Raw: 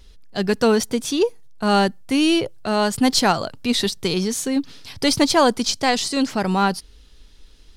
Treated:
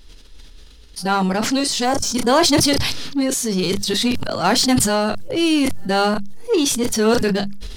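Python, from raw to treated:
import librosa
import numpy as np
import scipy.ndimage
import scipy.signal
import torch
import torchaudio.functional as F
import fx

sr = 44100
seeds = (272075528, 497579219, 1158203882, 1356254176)

p1 = np.flip(x).copy()
p2 = fx.hum_notches(p1, sr, base_hz=50, count=4)
p3 = fx.doubler(p2, sr, ms=32.0, db=-14.0)
p4 = 10.0 ** (-20.5 / 20.0) * (np.abs((p3 / 10.0 ** (-20.5 / 20.0) + 3.0) % 4.0 - 2.0) - 1.0)
p5 = p3 + (p4 * librosa.db_to_amplitude(-11.5))
p6 = fx.spec_box(p5, sr, start_s=1.85, length_s=0.29, low_hz=1700.0, high_hz=5200.0, gain_db=-11)
y = fx.sustainer(p6, sr, db_per_s=32.0)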